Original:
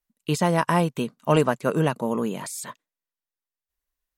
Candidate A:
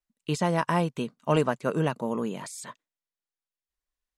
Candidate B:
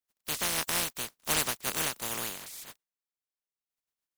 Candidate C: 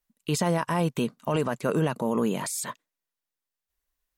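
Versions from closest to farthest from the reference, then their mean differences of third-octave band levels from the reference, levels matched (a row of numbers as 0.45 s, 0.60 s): A, C, B; 1.0 dB, 3.0 dB, 13.0 dB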